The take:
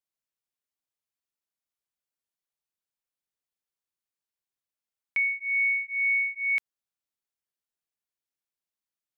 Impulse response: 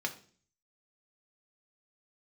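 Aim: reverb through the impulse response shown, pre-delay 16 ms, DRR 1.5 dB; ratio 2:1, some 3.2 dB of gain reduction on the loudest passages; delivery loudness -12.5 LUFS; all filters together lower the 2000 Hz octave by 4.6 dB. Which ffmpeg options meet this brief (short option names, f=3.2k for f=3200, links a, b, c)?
-filter_complex "[0:a]equalizer=f=2k:t=o:g=-5,acompressor=threshold=-33dB:ratio=2,asplit=2[a][b];[1:a]atrim=start_sample=2205,adelay=16[c];[b][c]afir=irnorm=-1:irlink=0,volume=-5.5dB[d];[a][d]amix=inputs=2:normalize=0,volume=17.5dB"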